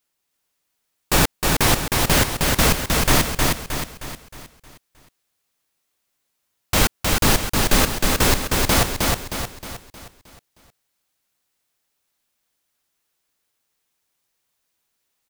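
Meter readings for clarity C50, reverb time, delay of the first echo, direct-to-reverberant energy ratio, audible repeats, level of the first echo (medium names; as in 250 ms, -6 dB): no reverb, no reverb, 312 ms, no reverb, 5, -3.0 dB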